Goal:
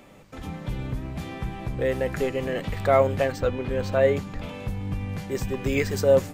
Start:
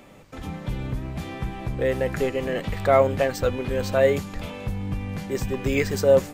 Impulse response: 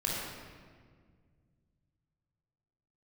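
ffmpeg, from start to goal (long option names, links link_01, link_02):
-filter_complex "[0:a]asettb=1/sr,asplit=3[link_01][link_02][link_03];[link_01]atrim=end=3.324[link_04];[link_02]atrim=start=3.32:end=4.49,asetpts=PTS-STARTPTS,afade=type=in:duration=0.004:curve=qsin,afade=type=out:start_time=1.166:duration=0.004:curve=qsin,aemphasis=mode=reproduction:type=cd[link_05];[link_03]atrim=start=4.486[link_06];[link_04][link_05]acrossfade=duration=0.004:curve1=hsin:curve2=qsin[link_07];[link_07][link_06]acrossfade=duration=0.004:curve1=qsin:curve2=hsin,asplit=2[link_08][link_09];[link_09]asuperpass=centerf=170:order=12:qfactor=0.9[link_10];[1:a]atrim=start_sample=2205,adelay=47[link_11];[link_10][link_11]afir=irnorm=-1:irlink=0,volume=-20.5dB[link_12];[link_08][link_12]amix=inputs=2:normalize=0,volume=-1.5dB"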